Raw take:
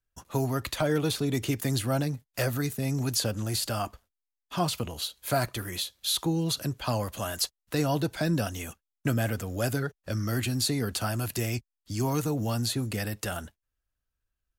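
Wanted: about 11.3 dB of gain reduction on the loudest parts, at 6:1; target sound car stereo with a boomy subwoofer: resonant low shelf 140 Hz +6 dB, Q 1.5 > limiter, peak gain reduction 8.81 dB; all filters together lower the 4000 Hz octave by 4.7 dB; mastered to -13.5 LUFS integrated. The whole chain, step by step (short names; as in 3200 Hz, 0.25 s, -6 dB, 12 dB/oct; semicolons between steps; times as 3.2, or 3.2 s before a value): bell 4000 Hz -5.5 dB; compressor 6:1, threshold -35 dBFS; resonant low shelf 140 Hz +6 dB, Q 1.5; gain +25 dB; limiter -4 dBFS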